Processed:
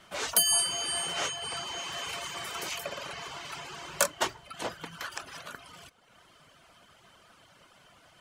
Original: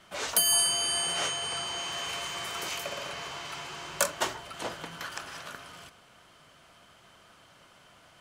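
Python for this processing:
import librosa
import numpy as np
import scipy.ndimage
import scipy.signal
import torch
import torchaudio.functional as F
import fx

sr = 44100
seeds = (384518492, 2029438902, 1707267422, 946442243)

y = fx.dereverb_blind(x, sr, rt60_s=0.88)
y = F.gain(torch.from_numpy(y), 1.0).numpy()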